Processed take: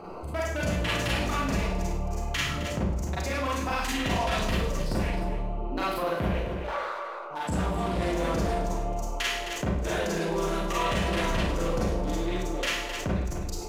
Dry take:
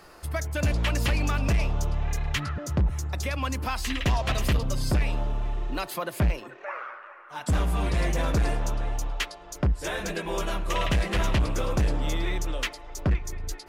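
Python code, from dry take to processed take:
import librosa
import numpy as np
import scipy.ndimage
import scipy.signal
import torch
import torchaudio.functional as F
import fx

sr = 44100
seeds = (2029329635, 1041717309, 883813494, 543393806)

p1 = fx.wiener(x, sr, points=25)
p2 = fx.low_shelf(p1, sr, hz=130.0, db=-9.0)
p3 = p2 + fx.echo_single(p2, sr, ms=262, db=-13.0, dry=0)
p4 = fx.rev_schroeder(p3, sr, rt60_s=0.53, comb_ms=33, drr_db=-7.0)
p5 = fx.env_flatten(p4, sr, amount_pct=50)
y = p5 * 10.0 ** (-6.5 / 20.0)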